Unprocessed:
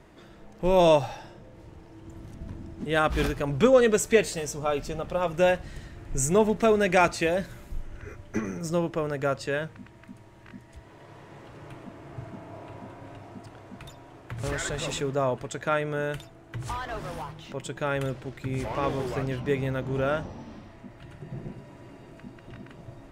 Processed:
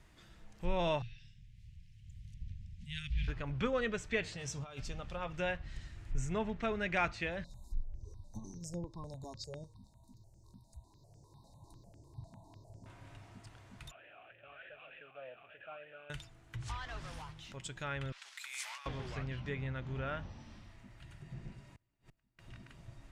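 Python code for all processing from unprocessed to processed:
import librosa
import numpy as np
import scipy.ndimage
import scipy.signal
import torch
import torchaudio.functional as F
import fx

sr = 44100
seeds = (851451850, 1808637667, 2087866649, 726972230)

y = fx.chain(x, sr, fx.cheby2_bandstop(low_hz=390.0, high_hz=1000.0, order=4, stop_db=60),
    fx.high_shelf(hz=4600.0, db=-10.0), at=(1.02, 3.28))
y = fx.chain(y, sr, fx.highpass(hz=95.0, slope=6),
    fx.peak_eq(hz=130.0, db=6.5, octaves=0.62),
    fx.over_compress(threshold_db=-32.0, ratio=-1.0), at=(4.24, 4.81))
y = fx.chain(y, sr, fx.brickwall_bandstop(low_hz=1100.0, high_hz=3600.0),
    fx.phaser_held(hz=10.0, low_hz=370.0, high_hz=3900.0), at=(7.44, 12.86))
y = fx.chain(y, sr, fx.delta_mod(bps=16000, step_db=-28.0),
    fx.vowel_sweep(vowels='a-e', hz=3.3), at=(13.91, 16.1))
y = fx.chain(y, sr, fx.highpass(hz=950.0, slope=24),
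    fx.high_shelf(hz=2900.0, db=8.5),
    fx.over_compress(threshold_db=-38.0, ratio=-1.0), at=(18.12, 18.86))
y = fx.chain(y, sr, fx.low_shelf(hz=78.0, db=4.0),
    fx.gate_flip(shuts_db=-37.0, range_db=-28), at=(21.75, 22.39))
y = fx.low_shelf(y, sr, hz=110.0, db=9.5)
y = fx.env_lowpass_down(y, sr, base_hz=2700.0, full_db=-21.5)
y = fx.tone_stack(y, sr, knobs='5-5-5')
y = y * librosa.db_to_amplitude(3.0)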